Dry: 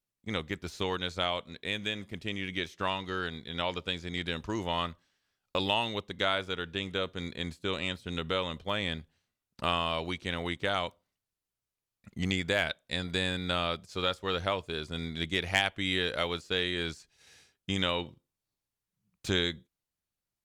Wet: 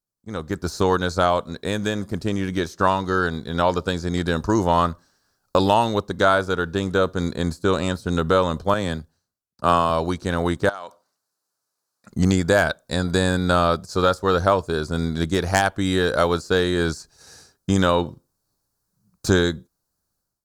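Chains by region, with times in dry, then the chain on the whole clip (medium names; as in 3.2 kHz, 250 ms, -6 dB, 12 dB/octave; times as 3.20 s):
8.74–9.90 s: bass shelf 63 Hz -10.5 dB + three bands expanded up and down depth 70%
10.69–12.10 s: frequency weighting A + compression 16:1, threshold -40 dBFS
whole clip: high-order bell 2.6 kHz -15.5 dB 1.1 oct; level rider gain up to 14.5 dB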